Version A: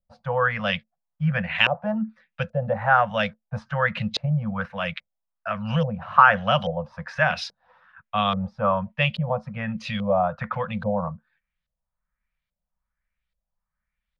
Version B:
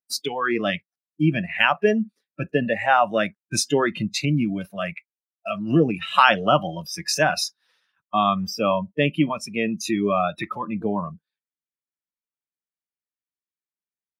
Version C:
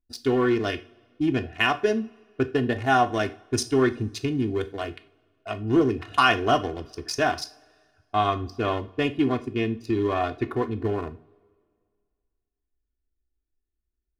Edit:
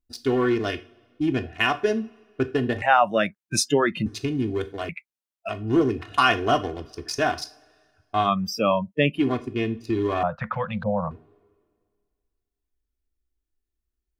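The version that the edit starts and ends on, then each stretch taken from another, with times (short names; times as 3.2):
C
2.82–4.06 from B
4.89–5.49 from B
8.27–9.18 from B, crossfade 0.10 s
10.23–11.11 from A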